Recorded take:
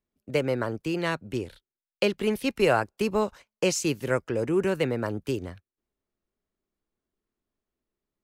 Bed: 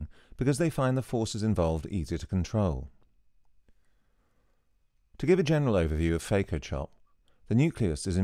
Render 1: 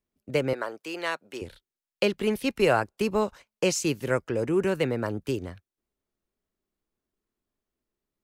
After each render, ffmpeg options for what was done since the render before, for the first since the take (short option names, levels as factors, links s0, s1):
-filter_complex "[0:a]asettb=1/sr,asplit=3[s0][s1][s2];[s0]atrim=end=0.534[s3];[s1]atrim=start=0.53:end=1.42,asetpts=PTS-STARTPTS,afade=t=in:d=0.004:c=qsin,afade=t=out:st=0.886:d=0.004:c=qsin,highpass=520[s4];[s2]atrim=start=1.416[s5];[s3][s4]acrossfade=d=0.004:c1=hsin:c2=qsin[s6];[s6][s5]acrossfade=d=0.004:c1=qsin:c2=hsin"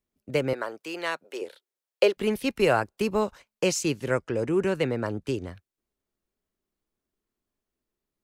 -filter_complex "[0:a]asettb=1/sr,asplit=3[s0][s1][s2];[s0]atrim=end=1.244[s3];[s1]atrim=start=1.24:end=2.17,asetpts=PTS-STARTPTS,afade=t=in:d=0.004:c=qsin,afade=t=out:st=0.926:d=0.004:c=qsin,highpass=f=460:t=q:w=2.1[s4];[s2]atrim=start=2.166[s5];[s3][s4]acrossfade=d=0.004:c1=hsin:c2=qsin[s6];[s6][s5]acrossfade=d=0.004:c1=qsin:c2=hsin,asettb=1/sr,asplit=3[s7][s8][s9];[s7]atrim=end=3.834[s10];[s8]atrim=start=3.83:end=5.49,asetpts=PTS-STARTPTS,afade=t=in:d=0.004:c=qsin,afade=t=out:st=1.656:d=0.004:c=qsin,lowpass=10000[s11];[s9]atrim=start=5.486[s12];[s10][s11]acrossfade=d=0.004:c1=hsin:c2=qsin[s13];[s13][s12]acrossfade=d=0.004:c1=qsin:c2=hsin"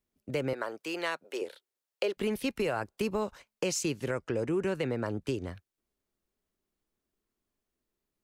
-af "alimiter=limit=0.141:level=0:latency=1,acompressor=threshold=0.0316:ratio=2"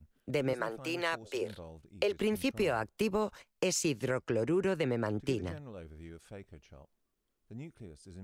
-filter_complex "[1:a]volume=0.0891[s0];[0:a][s0]amix=inputs=2:normalize=0"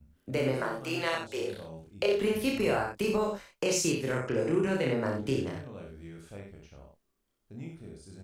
-filter_complex "[0:a]asplit=2[s0][s1];[s1]adelay=30,volume=0.75[s2];[s0][s2]amix=inputs=2:normalize=0,asplit=2[s3][s4];[s4]aecho=0:1:62|87:0.562|0.266[s5];[s3][s5]amix=inputs=2:normalize=0"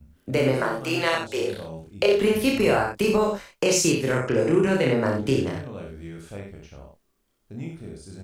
-af "volume=2.37"